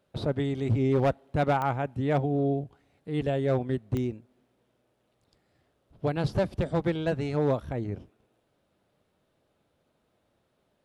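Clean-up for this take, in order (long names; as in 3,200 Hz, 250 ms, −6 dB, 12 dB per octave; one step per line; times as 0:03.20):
clipped peaks rebuilt −18 dBFS
click removal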